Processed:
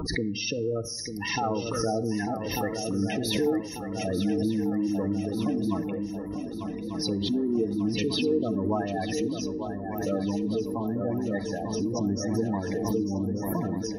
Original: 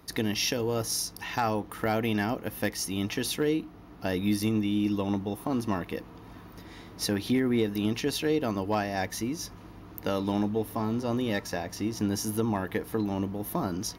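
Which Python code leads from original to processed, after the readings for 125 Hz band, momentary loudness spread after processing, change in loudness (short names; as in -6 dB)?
+1.0 dB, 6 LU, +1.0 dB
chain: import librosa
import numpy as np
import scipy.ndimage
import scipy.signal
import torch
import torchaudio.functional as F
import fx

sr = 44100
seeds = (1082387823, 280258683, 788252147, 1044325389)

y = fx.spec_gate(x, sr, threshold_db=-10, keep='strong')
y = fx.peak_eq(y, sr, hz=11000.0, db=-5.0, octaves=2.0)
y = fx.echo_swing(y, sr, ms=1193, ratio=3, feedback_pct=56, wet_db=-8.0)
y = fx.room_shoebox(y, sr, seeds[0], volume_m3=2100.0, walls='furnished', distance_m=0.59)
y = fx.pre_swell(y, sr, db_per_s=34.0)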